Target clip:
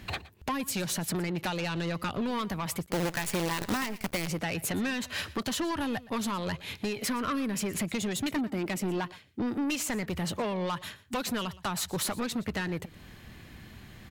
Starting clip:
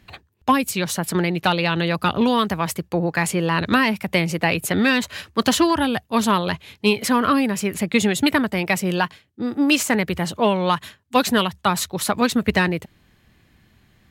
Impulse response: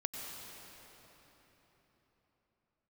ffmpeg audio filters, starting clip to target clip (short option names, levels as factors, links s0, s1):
-filter_complex "[0:a]asettb=1/sr,asplit=3[s0][s1][s2];[s0]atrim=end=8.364[s3];[s1]atrim=start=8.36:end=9.05,asetpts=PTS-STARTPTS,afade=t=in:d=0.004:c=qsin,afade=t=out:st=0.686:d=0.004:c=qsin,equalizer=f=290:w=1.5:g=12.5[s4];[s2]atrim=start=9.046[s5];[s3][s4]acrossfade=d=0.004:c1=hsin:c2=qsin[s6];[s6][s5]acrossfade=d=0.004:c1=qsin:c2=hsin,acompressor=threshold=0.0251:ratio=8,asoftclip=type=tanh:threshold=0.02,asplit=3[s7][s8][s9];[s7]afade=t=out:st=2.85:d=0.02[s10];[s8]acrusher=bits=7:dc=4:mix=0:aa=0.000001,afade=t=in:st=2.85:d=0.02,afade=t=out:st=4.27:d=0.02[s11];[s9]afade=t=in:st=4.27:d=0.02[s12];[s10][s11][s12]amix=inputs=3:normalize=0,aecho=1:1:118:0.106,volume=2.51"